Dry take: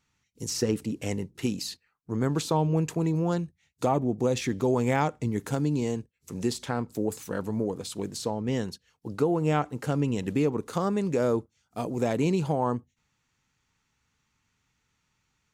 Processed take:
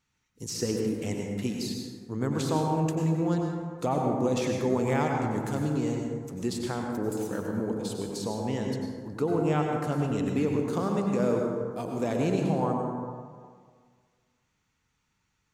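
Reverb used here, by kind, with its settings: plate-style reverb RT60 1.8 s, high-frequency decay 0.4×, pre-delay 80 ms, DRR 1 dB; trim -3.5 dB

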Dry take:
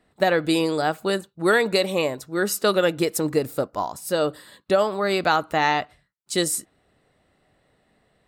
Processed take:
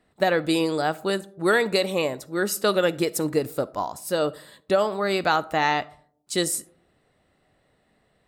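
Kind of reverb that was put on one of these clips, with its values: algorithmic reverb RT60 0.62 s, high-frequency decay 0.3×, pre-delay 10 ms, DRR 20 dB; trim -1.5 dB

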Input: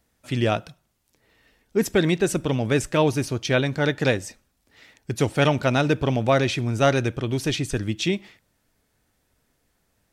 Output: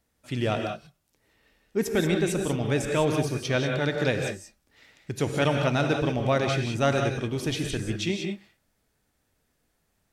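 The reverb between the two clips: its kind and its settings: gated-style reverb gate 210 ms rising, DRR 3.5 dB; trim -5 dB

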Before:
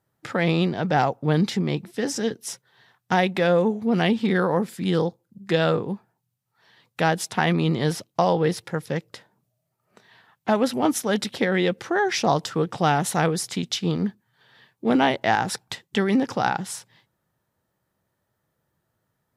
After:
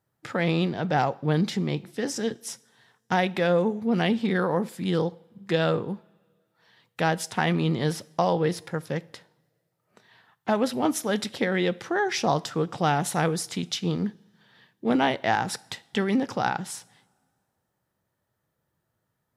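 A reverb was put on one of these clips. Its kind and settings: two-slope reverb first 0.55 s, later 2.1 s, from -18 dB, DRR 18 dB; trim -3 dB

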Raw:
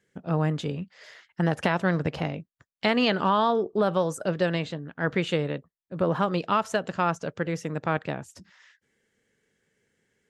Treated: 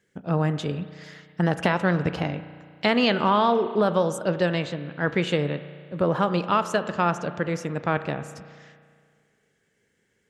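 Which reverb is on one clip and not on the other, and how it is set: spring tank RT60 2 s, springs 34 ms, chirp 25 ms, DRR 11.5 dB; trim +2 dB

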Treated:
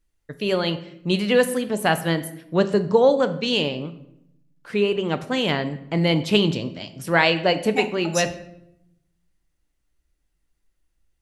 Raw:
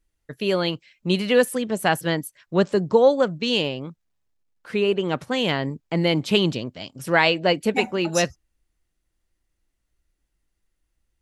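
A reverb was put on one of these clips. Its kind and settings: simulated room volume 220 m³, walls mixed, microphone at 0.34 m

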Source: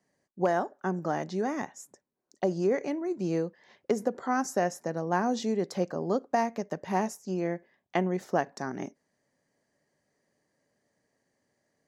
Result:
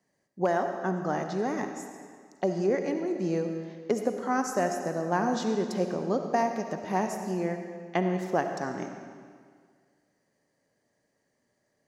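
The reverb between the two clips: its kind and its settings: algorithmic reverb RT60 1.9 s, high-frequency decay 0.9×, pre-delay 30 ms, DRR 5.5 dB

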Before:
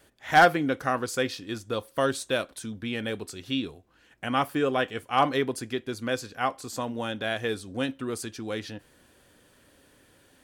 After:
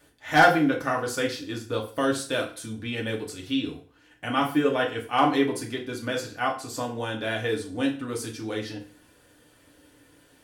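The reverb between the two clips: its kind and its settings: FDN reverb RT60 0.42 s, low-frequency decay 1×, high-frequency decay 0.9×, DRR -1 dB; trim -2 dB

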